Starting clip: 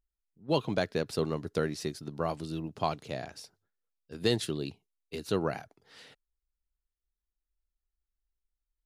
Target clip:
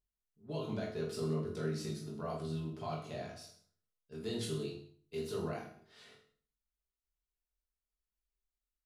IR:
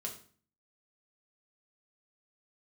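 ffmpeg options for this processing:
-filter_complex "[0:a]alimiter=limit=-24dB:level=0:latency=1:release=30,aecho=1:1:20|46|79.8|123.7|180.9:0.631|0.398|0.251|0.158|0.1[link_01];[1:a]atrim=start_sample=2205[link_02];[link_01][link_02]afir=irnorm=-1:irlink=0,volume=-6dB"

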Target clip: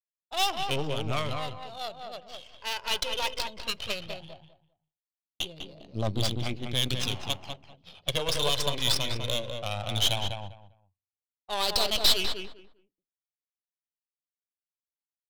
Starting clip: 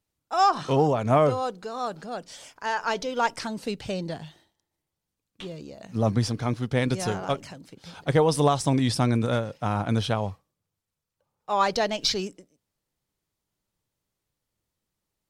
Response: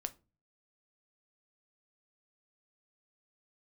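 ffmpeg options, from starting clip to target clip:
-filter_complex "[0:a]flanger=delay=0.2:depth=1.8:regen=21:speed=0.17:shape=sinusoidal,agate=range=-33dB:threshold=-47dB:ratio=3:detection=peak,highshelf=frequency=2200:width_type=q:width=3:gain=11.5,bandreject=frequency=470:width=12,aeval=exprs='(tanh(8.91*val(0)+0.8)-tanh(0.8))/8.91':channel_layout=same,equalizer=frequency=210:width_type=o:width=1.6:gain=-7,adynamicsmooth=sensitivity=4:basefreq=1500,asplit=2[link_01][link_02];[link_02]adelay=199,lowpass=frequency=1900:poles=1,volume=-4dB,asplit=2[link_03][link_04];[link_04]adelay=199,lowpass=frequency=1900:poles=1,volume=0.21,asplit=2[link_05][link_06];[link_06]adelay=199,lowpass=frequency=1900:poles=1,volume=0.21[link_07];[link_01][link_03][link_05][link_07]amix=inputs=4:normalize=0,asplit=2[link_08][link_09];[1:a]atrim=start_sample=2205[link_10];[link_09][link_10]afir=irnorm=-1:irlink=0,volume=-12.5dB[link_11];[link_08][link_11]amix=inputs=2:normalize=0"

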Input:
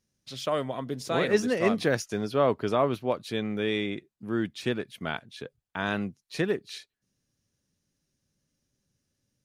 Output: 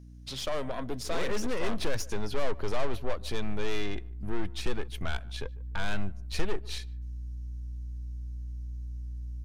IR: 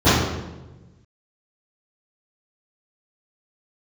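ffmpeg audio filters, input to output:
-filter_complex "[0:a]aeval=exprs='val(0)+0.00251*(sin(2*PI*60*n/s)+sin(2*PI*2*60*n/s)/2+sin(2*PI*3*60*n/s)/3+sin(2*PI*4*60*n/s)/4+sin(2*PI*5*60*n/s)/5)':channel_layout=same,aeval=exprs='(tanh(31.6*val(0)+0.55)-tanh(0.55))/31.6':channel_layout=same,acompressor=threshold=-47dB:ratio=1.5,asplit=2[link_01][link_02];[link_02]adelay=148,lowpass=frequency=1300:poles=1,volume=-20.5dB,asplit=2[link_03][link_04];[link_04]adelay=148,lowpass=frequency=1300:poles=1,volume=0.29[link_05];[link_03][link_05]amix=inputs=2:normalize=0[link_06];[link_01][link_06]amix=inputs=2:normalize=0,asubboost=boost=7.5:cutoff=71,volume=7.5dB"

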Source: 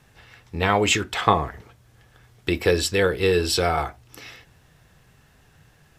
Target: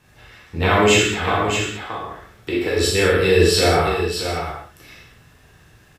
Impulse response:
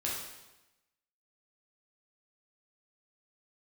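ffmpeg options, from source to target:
-filter_complex "[0:a]asettb=1/sr,asplit=3[link_01][link_02][link_03];[link_01]atrim=end=1.024[link_04];[link_02]atrim=start=1.02:end=2.77,asetpts=PTS-STARTPTS,afade=type=in:duration=0.004:curve=qsin,afade=type=out:start_time=1.746:duration=0.004:curve=qsin,acrossover=split=220|1300|3700[link_05][link_06][link_07][link_08];[link_05]acompressor=threshold=-43dB:ratio=4[link_09];[link_06]acompressor=threshold=-23dB:ratio=4[link_10];[link_07]acompressor=threshold=-34dB:ratio=4[link_11];[link_08]acompressor=threshold=-48dB:ratio=4[link_12];[link_09][link_10][link_11][link_12]amix=inputs=4:normalize=0[link_13];[link_03]atrim=start=2.766[link_14];[link_04][link_13]acrossfade=duration=0.004:curve1=hsin:curve2=qsin[link_15];[link_15][link_14]acrossfade=duration=0.004:curve1=qsin:curve2=hsin,aecho=1:1:43|624:0.422|0.473[link_16];[1:a]atrim=start_sample=2205,afade=type=out:start_time=0.27:duration=0.01,atrim=end_sample=12348[link_17];[link_16][link_17]afir=irnorm=-1:irlink=0"

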